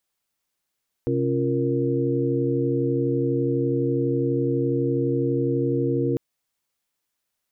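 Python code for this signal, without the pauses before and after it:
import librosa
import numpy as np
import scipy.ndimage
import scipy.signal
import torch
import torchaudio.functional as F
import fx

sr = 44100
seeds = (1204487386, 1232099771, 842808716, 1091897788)

y = fx.chord(sr, length_s=5.1, notes=(48, 61, 65, 70), wave='sine', level_db=-25.5)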